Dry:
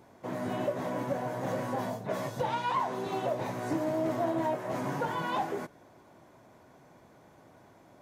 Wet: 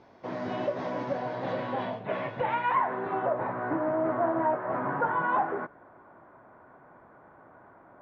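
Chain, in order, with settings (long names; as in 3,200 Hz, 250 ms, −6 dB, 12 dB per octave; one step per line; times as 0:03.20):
parametric band 120 Hz −5.5 dB 2.5 octaves
low-pass filter sweep 5,400 Hz → 1,400 Hz, 0:01.04–0:03.27
high-frequency loss of the air 220 metres
level +3 dB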